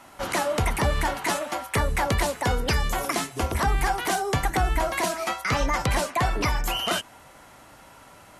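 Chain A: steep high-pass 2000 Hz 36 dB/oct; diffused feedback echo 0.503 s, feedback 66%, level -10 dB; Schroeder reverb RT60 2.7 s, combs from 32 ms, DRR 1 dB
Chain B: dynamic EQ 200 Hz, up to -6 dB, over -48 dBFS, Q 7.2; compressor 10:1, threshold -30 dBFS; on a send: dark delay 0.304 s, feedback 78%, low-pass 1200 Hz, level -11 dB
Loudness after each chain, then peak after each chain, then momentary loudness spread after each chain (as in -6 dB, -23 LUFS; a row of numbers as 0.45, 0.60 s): -29.0, -34.0 LUFS; -13.0, -16.5 dBFS; 5, 11 LU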